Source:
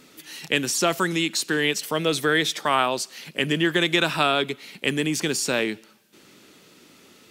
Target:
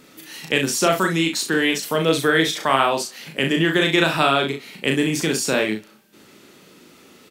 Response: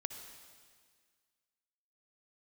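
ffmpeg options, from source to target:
-af "equalizer=frequency=5300:width_type=o:width=2.7:gain=-3.5,aecho=1:1:37|65:0.631|0.282,volume=3dB"

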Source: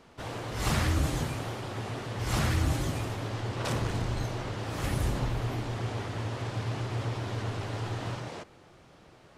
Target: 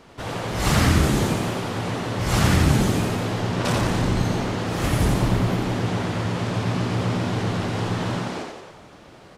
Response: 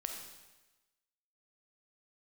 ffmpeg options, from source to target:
-filter_complex "[0:a]asplit=9[link_01][link_02][link_03][link_04][link_05][link_06][link_07][link_08][link_09];[link_02]adelay=87,afreqshift=65,volume=-3.5dB[link_10];[link_03]adelay=174,afreqshift=130,volume=-8.4dB[link_11];[link_04]adelay=261,afreqshift=195,volume=-13.3dB[link_12];[link_05]adelay=348,afreqshift=260,volume=-18.1dB[link_13];[link_06]adelay=435,afreqshift=325,volume=-23dB[link_14];[link_07]adelay=522,afreqshift=390,volume=-27.9dB[link_15];[link_08]adelay=609,afreqshift=455,volume=-32.8dB[link_16];[link_09]adelay=696,afreqshift=520,volume=-37.7dB[link_17];[link_01][link_10][link_11][link_12][link_13][link_14][link_15][link_16][link_17]amix=inputs=9:normalize=0,volume=7dB"

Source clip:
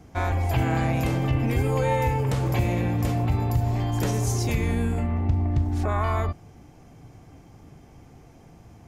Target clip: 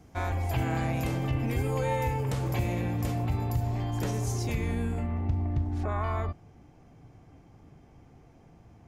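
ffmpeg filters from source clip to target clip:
ffmpeg -i in.wav -af "asetnsamples=nb_out_samples=441:pad=0,asendcmd='3.67 highshelf g -2.5;5.53 highshelf g -10',highshelf=frequency=5500:gain=3,volume=-5.5dB" out.wav

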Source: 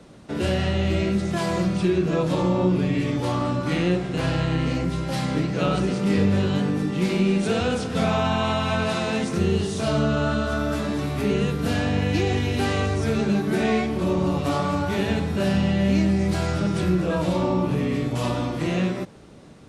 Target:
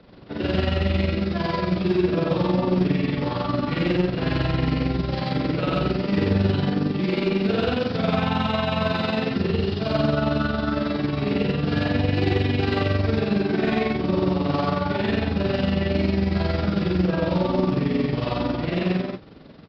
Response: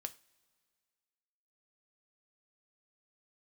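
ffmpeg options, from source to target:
-af "aecho=1:1:64.14|125.4:0.891|1,aresample=11025,acrusher=bits=5:mode=log:mix=0:aa=0.000001,aresample=44100,acontrast=70,tremolo=f=22:d=0.571,volume=-7.5dB"

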